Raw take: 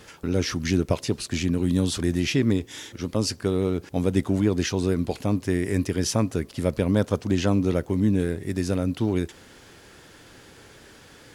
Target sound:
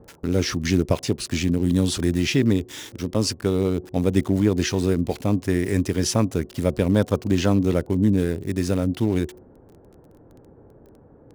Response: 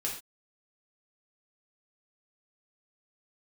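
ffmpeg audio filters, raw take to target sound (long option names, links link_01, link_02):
-filter_complex "[0:a]bandreject=frequency=365:width_type=h:width=4,bandreject=frequency=730:width_type=h:width=4,bandreject=frequency=1095:width_type=h:width=4,bandreject=frequency=1460:width_type=h:width=4,bandreject=frequency=1825:width_type=h:width=4,bandreject=frequency=2190:width_type=h:width=4,acrossover=split=860[link_01][link_02];[link_02]aeval=exprs='val(0)*gte(abs(val(0)),0.00794)':channel_layout=same[link_03];[link_01][link_03]amix=inputs=2:normalize=0,volume=2.5dB"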